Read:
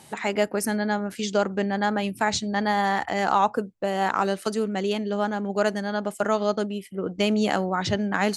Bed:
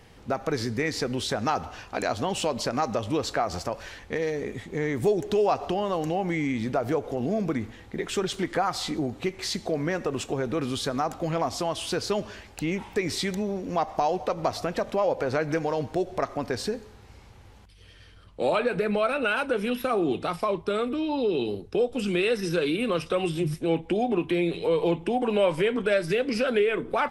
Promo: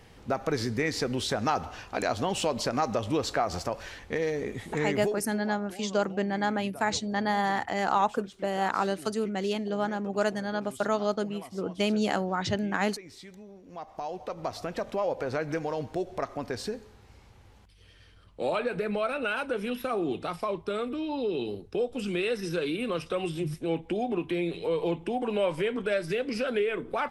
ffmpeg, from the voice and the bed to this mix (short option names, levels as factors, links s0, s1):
-filter_complex "[0:a]adelay=4600,volume=0.631[s0];[1:a]volume=4.73,afade=t=out:st=4.82:d=0.44:silence=0.125893,afade=t=in:st=13.63:d=1.21:silence=0.188365[s1];[s0][s1]amix=inputs=2:normalize=0"